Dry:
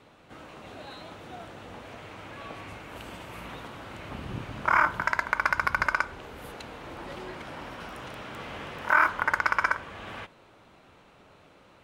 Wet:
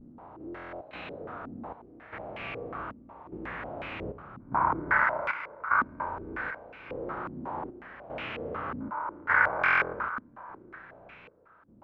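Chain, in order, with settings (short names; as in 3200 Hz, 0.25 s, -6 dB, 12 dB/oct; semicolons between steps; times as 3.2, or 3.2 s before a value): stepped spectrum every 0.4 s; vibrato 0.53 Hz 47 cents; flutter echo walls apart 5.8 m, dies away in 0.4 s; step gate "xxxx...xx" 113 bpm -12 dB; 5.04–6 low shelf 300 Hz -11 dB; thinning echo 0.574 s, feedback 32%, high-pass 560 Hz, level -13 dB; stuck buffer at 0.46/9.59, samples 1024, times 14; stepped low-pass 5.5 Hz 250–2500 Hz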